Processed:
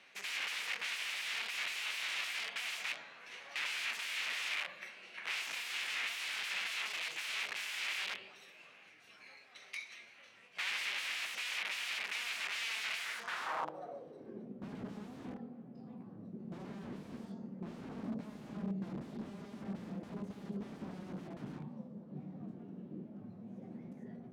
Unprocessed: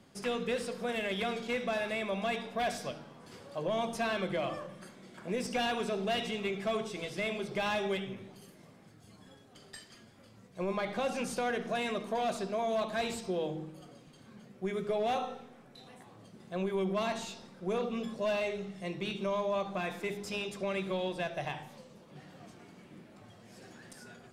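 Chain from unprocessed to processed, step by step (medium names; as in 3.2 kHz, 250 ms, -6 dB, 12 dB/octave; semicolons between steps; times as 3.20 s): integer overflow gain 37 dB; formant shift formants +4 st; band-pass sweep 2.4 kHz -> 210 Hz, 12.97–14.65 s; trim +11.5 dB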